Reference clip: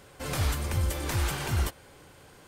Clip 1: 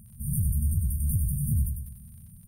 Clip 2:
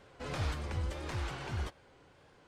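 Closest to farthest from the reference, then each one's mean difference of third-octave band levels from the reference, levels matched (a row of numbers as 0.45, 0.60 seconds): 2, 1; 4.0, 20.0 decibels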